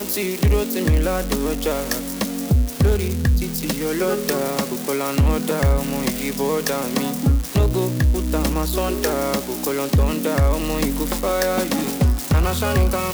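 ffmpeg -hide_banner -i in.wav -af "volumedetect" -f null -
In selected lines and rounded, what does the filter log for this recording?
mean_volume: -19.6 dB
max_volume: -8.8 dB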